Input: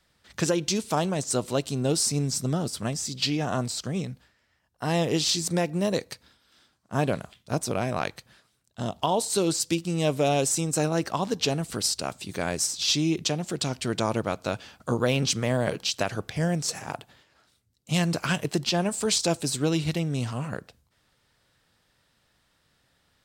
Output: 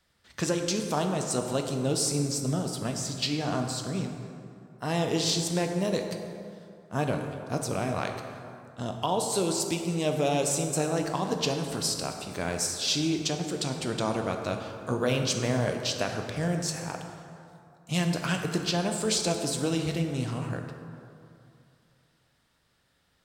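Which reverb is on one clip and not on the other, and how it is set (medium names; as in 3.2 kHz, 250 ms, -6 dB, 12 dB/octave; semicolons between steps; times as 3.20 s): plate-style reverb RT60 2.6 s, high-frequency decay 0.5×, DRR 3.5 dB; trim -3.5 dB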